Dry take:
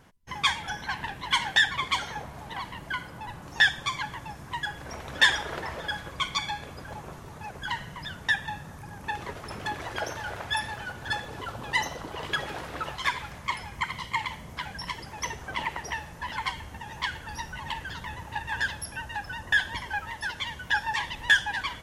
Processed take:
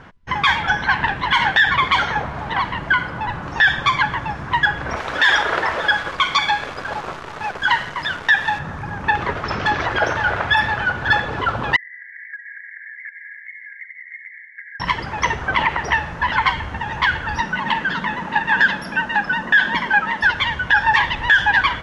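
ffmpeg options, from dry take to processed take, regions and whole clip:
-filter_complex "[0:a]asettb=1/sr,asplit=3[a][b][c];[a]atrim=end=4.964[d];[b]atrim=start=4.96:end=8.59,asetpts=PTS-STARTPTS,afade=t=in:d=0.004:c=qsin,afade=t=out:st=3.626:d=0.004:c=qsin,bass=f=250:g=-10,treble=f=4k:g=5,acrusher=bits=8:dc=4:mix=0:aa=0.000001[e];[c]atrim=start=8.586[f];[d][e]acrossfade=d=0.004:c1=hsin:c2=qsin[g];[g][f]acrossfade=d=0.004:c1=qsin:c2=hsin,asettb=1/sr,asplit=3[h][i][j];[h]atrim=end=9.444[k];[i]atrim=start=9.44:end=9.86,asetpts=PTS-STARTPTS,afade=t=in:d=0.004:c=qsin,afade=t=out:st=0.416:d=0.004:c=qsin,lowpass=f=5.6k:t=q:w=2.4,volume=27.5dB,asoftclip=hard,volume=-27.5dB[l];[j]atrim=start=9.856[m];[k][l]acrossfade=d=0.004:c1=hsin:c2=qsin[n];[n][m]acrossfade=d=0.004:c1=qsin:c2=hsin,asettb=1/sr,asplit=3[o][p][q];[o]atrim=end=11.764[r];[p]atrim=start=11.76:end=14.8,asetpts=PTS-STARTPTS,afade=t=in:d=0.004:c=qsin,afade=t=out:st=3.036:d=0.004:c=qsin,asuperpass=centerf=1900:order=20:qfactor=3,acompressor=threshold=-48dB:ratio=6:attack=3.2:release=140:knee=1:detection=peak[s];[q]atrim=start=14.796[t];[r][s]acrossfade=d=0.004:c1=hsin:c2=qsin[u];[u][t]acrossfade=d=0.004:c1=qsin:c2=hsin,asettb=1/sr,asplit=3[v][w][x];[v]atrim=end=17.404[y];[w]atrim=start=17.4:end=20.23,asetpts=PTS-STARTPTS,afade=t=in:d=0.004:c=qsin,afade=t=out:st=2.826:d=0.004:c=qsin,lowshelf=f=140:t=q:w=3:g=-11.5,bandreject=f=770:w=19[z];[x]atrim=start=20.226[aa];[y][z]acrossfade=d=0.004:c1=hsin:c2=qsin[ab];[ab][aa]acrossfade=d=0.004:c1=qsin:c2=hsin,lowpass=3.5k,equalizer=f=1.4k:w=1.6:g=5.5,alimiter=level_in=17.5dB:limit=-1dB:release=50:level=0:latency=1,volume=-4.5dB"

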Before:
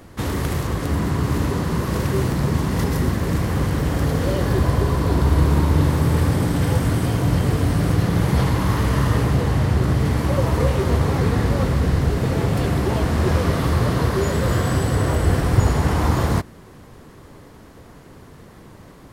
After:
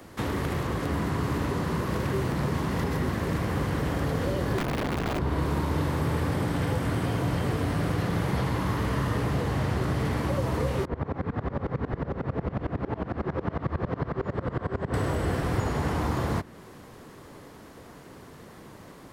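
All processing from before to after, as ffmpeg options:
-filter_complex "[0:a]asettb=1/sr,asplit=3[a][b][c];[a]atrim=end=4.584[d];[b]atrim=start=4.58:end=5.19,asetpts=PTS-STARTPTS,afade=t=in:d=0.004:c=qsin,afade=t=out:st=0.606:d=0.004:c=qsin,bandreject=f=7.4k:w=15,aeval=exprs='(mod(5.01*val(0)+1,2)-1)/5.01':c=same[e];[c]atrim=start=5.186[f];[d][e]acrossfade=d=0.004:c1=hsin:c2=qsin[g];[g][f]acrossfade=d=0.004:c1=qsin:c2=hsin,asettb=1/sr,asplit=3[h][i][j];[h]atrim=end=10.854[k];[i]atrim=start=10.85:end=14.94,asetpts=PTS-STARTPTS,afade=t=in:d=0.004:c=qsin,afade=t=out:st=4.086:d=0.004:c=qsin,lowpass=1.6k,aecho=1:1:523:0.708,atrim=end_sample=180369,aeval=exprs='val(0)*pow(10,-24*if(lt(mod(-11*n/s,1),2*abs(-11)/1000),1-mod(-11*n/s,1)/(2*abs(-11)/1000),(mod(-11*n/s,1)-2*abs(-11)/1000)/(1-2*abs(-11)/1000))/20)':c=same[l];[j]atrim=start=14.936[m];[k][l]acrossfade=d=0.004:c1=hsin:c2=qsin[n];[n][m]acrossfade=d=0.004:c1=qsin:c2=hsin,lowshelf=f=110:g=-10.5,acrossover=split=140|430|3700[o][p][q][r];[o]acompressor=threshold=-27dB:ratio=4[s];[p]acompressor=threshold=-30dB:ratio=4[t];[q]acompressor=threshold=-31dB:ratio=4[u];[r]acompressor=threshold=-49dB:ratio=4[v];[s][t][u][v]amix=inputs=4:normalize=0,volume=-1dB"

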